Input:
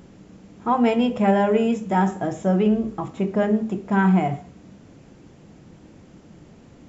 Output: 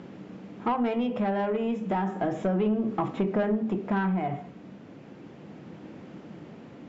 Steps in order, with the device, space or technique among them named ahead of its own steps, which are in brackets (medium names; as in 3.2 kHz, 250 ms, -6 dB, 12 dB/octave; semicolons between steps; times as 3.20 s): AM radio (band-pass 160–3300 Hz; compression 8:1, threshold -25 dBFS, peak gain reduction 11 dB; saturation -22 dBFS, distortion -18 dB; tremolo 0.33 Hz, depth 29%); trim +5 dB